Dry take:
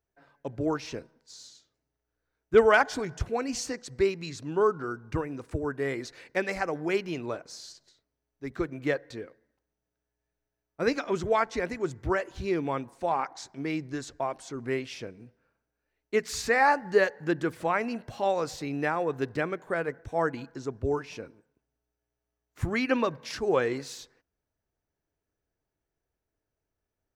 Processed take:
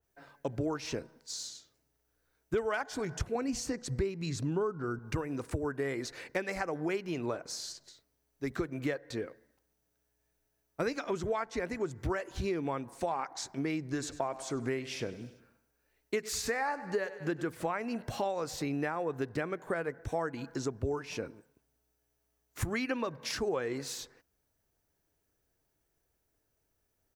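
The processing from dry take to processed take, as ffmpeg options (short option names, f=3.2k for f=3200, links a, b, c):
-filter_complex "[0:a]asettb=1/sr,asplit=3[a][b][c];[a]atrim=end=3.354[d];[b]atrim=start=3.35:end=4.99,asetpts=PTS-STARTPTS,afade=t=in:d=0.004:c=qsin,afade=t=out:st=1.636:d=0.004:c=qsin,lowshelf=f=250:g=10.5[e];[c]atrim=start=4.986[f];[d][e]acrossfade=d=0.004:c1=hsin:c2=qsin[g];[g][f]acrossfade=d=0.004:c1=qsin:c2=hsin,asplit=3[h][i][j];[h]afade=t=out:st=13.98:d=0.02[k];[i]aecho=1:1:98|196|294|392:0.133|0.0667|0.0333|0.0167,afade=t=in:st=13.98:d=0.02,afade=t=out:st=17.41:d=0.02[l];[j]afade=t=in:st=17.41:d=0.02[m];[k][l][m]amix=inputs=3:normalize=0,highshelf=f=6k:g=9.5,acompressor=threshold=-35dB:ratio=6,adynamicequalizer=threshold=0.00178:dfrequency=2400:dqfactor=0.7:tfrequency=2400:tqfactor=0.7:attack=5:release=100:ratio=0.375:range=3:mode=cutabove:tftype=highshelf,volume=4.5dB"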